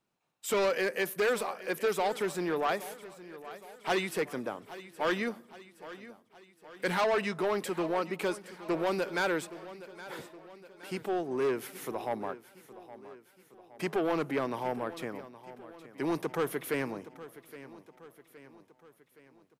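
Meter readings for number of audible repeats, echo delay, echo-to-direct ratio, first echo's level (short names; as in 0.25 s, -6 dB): 4, 0.818 s, -14.5 dB, -16.0 dB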